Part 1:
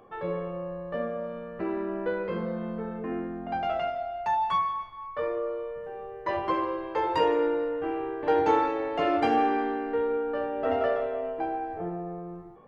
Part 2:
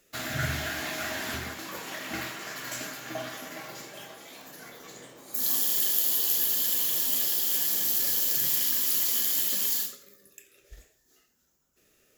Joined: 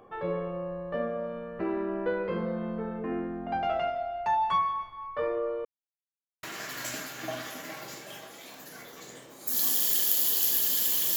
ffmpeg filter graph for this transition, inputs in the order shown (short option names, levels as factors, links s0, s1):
-filter_complex "[0:a]apad=whole_dur=11.16,atrim=end=11.16,asplit=2[s0][s1];[s0]atrim=end=5.65,asetpts=PTS-STARTPTS,afade=t=out:st=5.646:d=0.004:c=hsin[s2];[s1]atrim=start=5.65:end=6.43,asetpts=PTS-STARTPTS,volume=0[s3];[1:a]atrim=start=2.3:end=7.03,asetpts=PTS-STARTPTS,afade=t=in:d=0.004:c=hsin[s4];[s2][s3][s4]concat=n=3:v=0:a=1"